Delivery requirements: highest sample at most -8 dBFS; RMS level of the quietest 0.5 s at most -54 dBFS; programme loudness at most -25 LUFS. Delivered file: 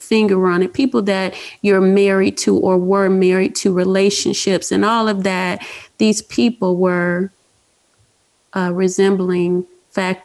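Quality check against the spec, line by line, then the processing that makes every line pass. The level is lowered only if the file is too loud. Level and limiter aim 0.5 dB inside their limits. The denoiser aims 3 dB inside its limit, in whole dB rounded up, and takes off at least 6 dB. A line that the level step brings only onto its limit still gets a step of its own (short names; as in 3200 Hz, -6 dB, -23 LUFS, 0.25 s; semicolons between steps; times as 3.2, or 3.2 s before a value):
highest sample -5.0 dBFS: fail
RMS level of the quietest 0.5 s -60 dBFS: OK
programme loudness -16.0 LUFS: fail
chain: gain -9.5 dB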